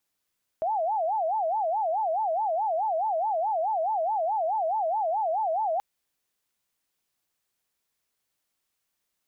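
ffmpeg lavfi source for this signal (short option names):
-f lavfi -i "aevalsrc='0.0668*sin(2*PI*(760*t-127/(2*PI*4.7)*sin(2*PI*4.7*t)))':d=5.18:s=44100"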